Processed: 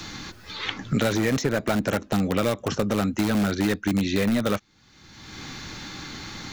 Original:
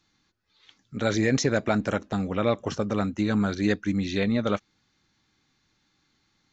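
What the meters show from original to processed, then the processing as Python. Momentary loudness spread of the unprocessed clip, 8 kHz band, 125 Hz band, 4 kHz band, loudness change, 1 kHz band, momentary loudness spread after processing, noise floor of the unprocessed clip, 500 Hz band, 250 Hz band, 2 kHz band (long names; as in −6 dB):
6 LU, can't be measured, +2.0 dB, +5.0 dB, +1.0 dB, +2.0 dB, 14 LU, −71 dBFS, +1.0 dB, +2.0 dB, +2.5 dB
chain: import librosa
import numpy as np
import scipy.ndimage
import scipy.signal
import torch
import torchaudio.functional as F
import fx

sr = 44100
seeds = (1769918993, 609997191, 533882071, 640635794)

p1 = (np.mod(10.0 ** (19.5 / 20.0) * x + 1.0, 2.0) - 1.0) / 10.0 ** (19.5 / 20.0)
p2 = x + F.gain(torch.from_numpy(p1), -7.5).numpy()
y = fx.band_squash(p2, sr, depth_pct=100)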